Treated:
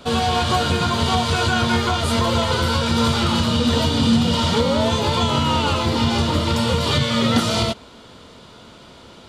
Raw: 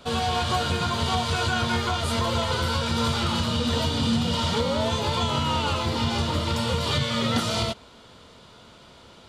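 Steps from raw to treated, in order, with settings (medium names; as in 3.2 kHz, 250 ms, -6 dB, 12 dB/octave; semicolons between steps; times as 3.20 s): peaking EQ 280 Hz +3.5 dB 1.2 oct; trim +5 dB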